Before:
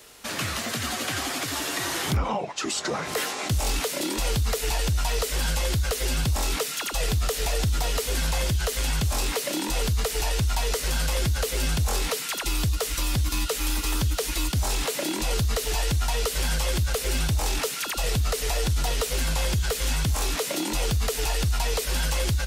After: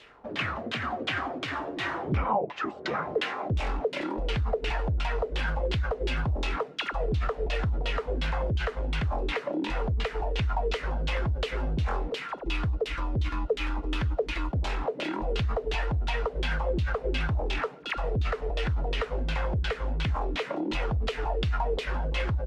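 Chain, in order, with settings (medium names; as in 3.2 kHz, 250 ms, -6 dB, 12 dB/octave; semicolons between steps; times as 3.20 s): LFO low-pass saw down 2.8 Hz 330–3400 Hz; trim -3.5 dB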